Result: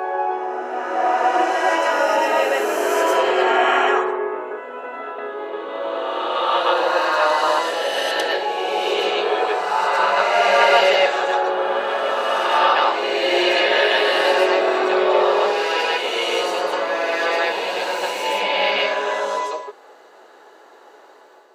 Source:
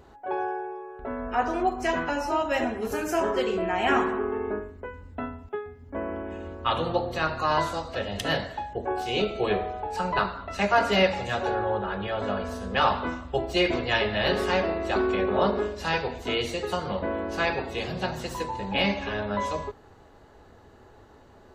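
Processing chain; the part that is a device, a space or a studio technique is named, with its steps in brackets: ghost voice (reverse; reverb RT60 3.0 s, pre-delay 88 ms, DRR -5 dB; reverse; HPF 420 Hz 24 dB/oct); gain +3.5 dB

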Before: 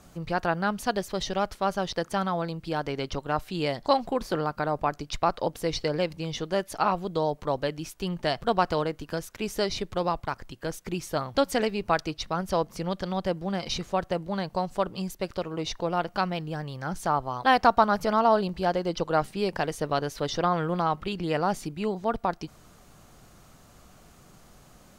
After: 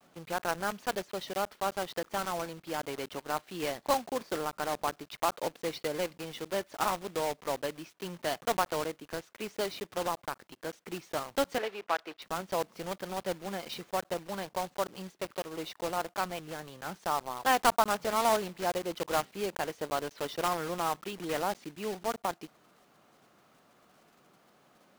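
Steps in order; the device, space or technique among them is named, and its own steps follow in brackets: gate with hold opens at -46 dBFS; early digital voice recorder (BPF 250–3500 Hz; block floating point 3-bit); 11.58–12.22 three-band isolator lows -16 dB, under 350 Hz, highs -14 dB, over 4200 Hz; gain -5.5 dB

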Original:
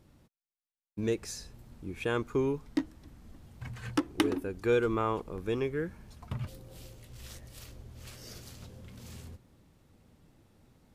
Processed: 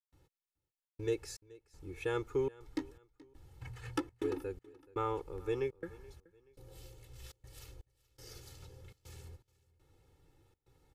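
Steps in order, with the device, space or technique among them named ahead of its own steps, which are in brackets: comb 2.3 ms, depth 99%; trance gate with a delay (step gate ".xxxxxx.xxx.." 121 bpm -60 dB; feedback echo 0.427 s, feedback 34%, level -22 dB); gain -8 dB

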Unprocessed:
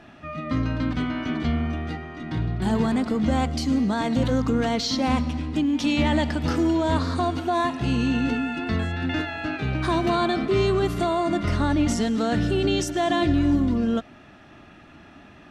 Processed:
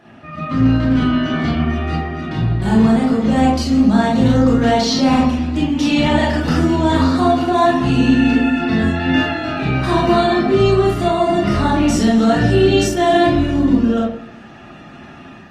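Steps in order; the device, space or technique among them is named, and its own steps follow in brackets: far-field microphone of a smart speaker (reverb RT60 0.60 s, pre-delay 24 ms, DRR -4.5 dB; HPF 100 Hz 6 dB/oct; AGC gain up to 4.5 dB; Opus 24 kbps 48000 Hz)

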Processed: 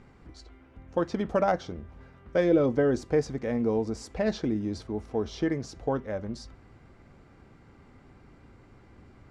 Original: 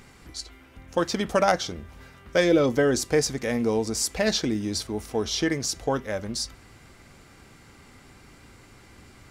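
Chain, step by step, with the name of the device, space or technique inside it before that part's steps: through cloth (LPF 7600 Hz 12 dB/oct; high shelf 2100 Hz -17.5 dB); gain -1.5 dB

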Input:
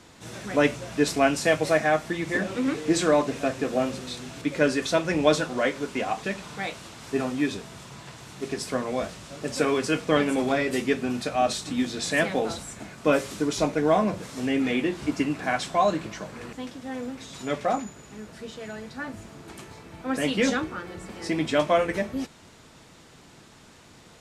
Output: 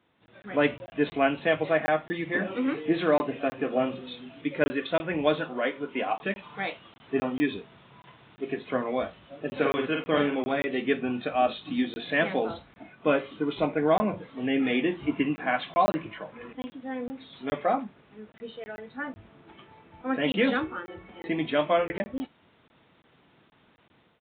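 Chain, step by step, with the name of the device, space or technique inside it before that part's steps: 9.45–10.35 doubler 49 ms -4 dB; spectral noise reduction 9 dB; call with lost packets (HPF 120 Hz 6 dB/oct; downsampling 8000 Hz; AGC gain up to 8.5 dB; packet loss packets of 20 ms random); gain -8 dB

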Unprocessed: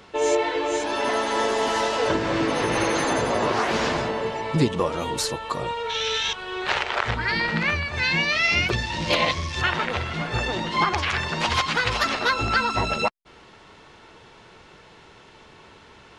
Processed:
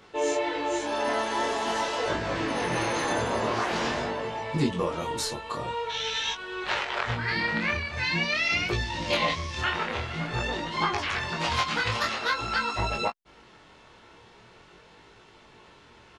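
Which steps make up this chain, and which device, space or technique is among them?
double-tracked vocal (doubler 17 ms -8 dB; chorus 0.46 Hz, delay 19.5 ms, depth 8 ms); 12.09–12.79 low shelf 450 Hz -6 dB; gain -2 dB

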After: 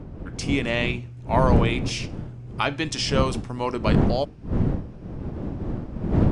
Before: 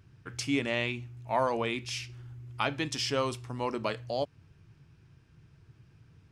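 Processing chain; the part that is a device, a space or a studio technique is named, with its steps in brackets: smartphone video outdoors (wind noise 210 Hz -30 dBFS; AGC gain up to 6 dB; AAC 96 kbps 22050 Hz)

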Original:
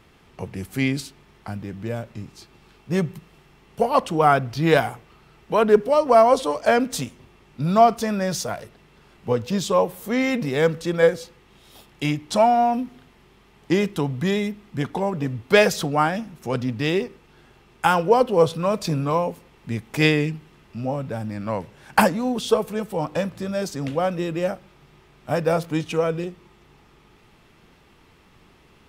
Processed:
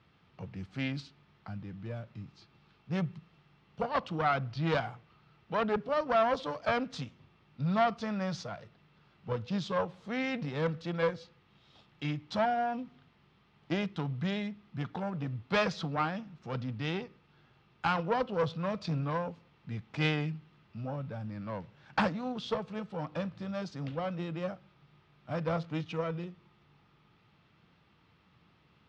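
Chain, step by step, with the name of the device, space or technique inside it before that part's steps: guitar amplifier (tube stage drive 13 dB, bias 0.75; tone controls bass +8 dB, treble +7 dB; speaker cabinet 110–4300 Hz, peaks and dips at 240 Hz -5 dB, 390 Hz -6 dB, 1300 Hz +4 dB); gain -8 dB

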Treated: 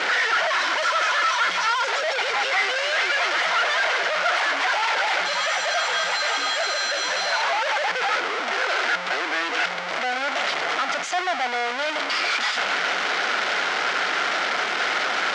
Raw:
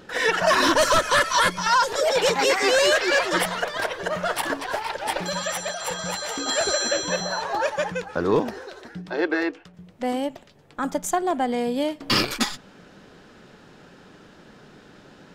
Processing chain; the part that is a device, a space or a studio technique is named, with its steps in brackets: home computer beeper (infinite clipping; speaker cabinet 630–5700 Hz, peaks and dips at 710 Hz +6 dB, 1400 Hz +8 dB, 2100 Hz +8 dB, 3100 Hz +3 dB)

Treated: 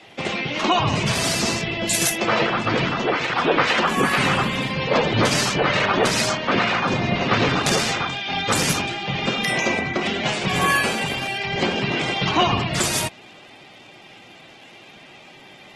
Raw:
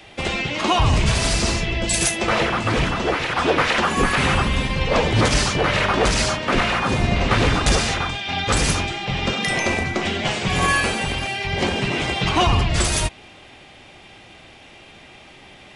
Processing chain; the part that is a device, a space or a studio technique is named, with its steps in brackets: noise-suppressed video call (HPF 120 Hz 24 dB/oct; spectral gate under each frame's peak -30 dB strong; Opus 16 kbps 48000 Hz)

